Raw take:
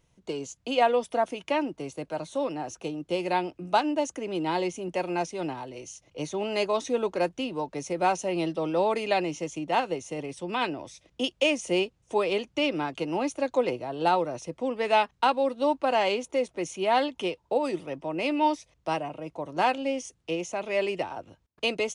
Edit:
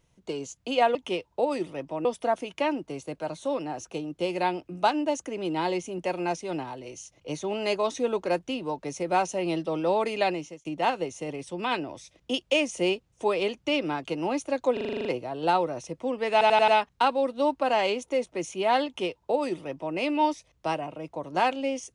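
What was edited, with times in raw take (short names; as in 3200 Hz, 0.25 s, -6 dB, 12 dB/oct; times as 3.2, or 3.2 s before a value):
9.19–9.55 fade out
13.63 stutter 0.04 s, 9 plays
14.9 stutter 0.09 s, 5 plays
17.08–18.18 copy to 0.95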